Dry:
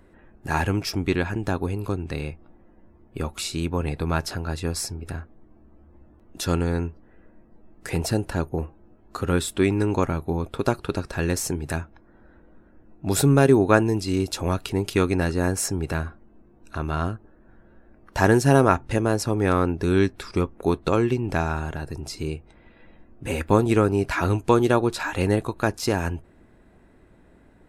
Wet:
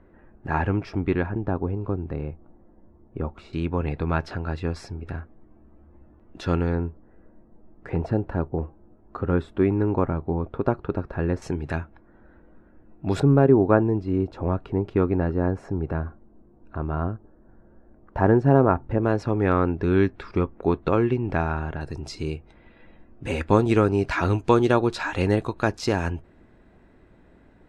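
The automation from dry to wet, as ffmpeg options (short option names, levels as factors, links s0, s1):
-af "asetnsamples=n=441:p=0,asendcmd='1.26 lowpass f 1100;3.53 lowpass f 2600;6.75 lowpass f 1300;11.42 lowpass f 2900;13.2 lowpass f 1100;19.03 lowpass f 2400;21.81 lowpass f 5600',lowpass=1800"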